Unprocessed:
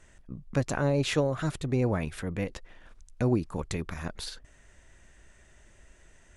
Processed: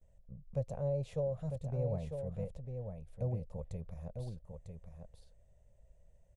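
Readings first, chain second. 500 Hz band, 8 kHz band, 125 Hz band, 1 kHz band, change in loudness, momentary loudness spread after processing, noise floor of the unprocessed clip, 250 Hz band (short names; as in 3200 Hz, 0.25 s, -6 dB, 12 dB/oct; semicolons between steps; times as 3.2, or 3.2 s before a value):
-7.5 dB, under -20 dB, -6.5 dB, -15.5 dB, -9.5 dB, 17 LU, -58 dBFS, -14.5 dB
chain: EQ curve 110 Hz 0 dB, 190 Hz -4 dB, 310 Hz -25 dB, 530 Hz +2 dB, 1500 Hz -27 dB, 2300 Hz -21 dB, 5700 Hz -20 dB, 8700 Hz -16 dB; echo 0.949 s -6.5 dB; gate with hold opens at -56 dBFS; gain -6 dB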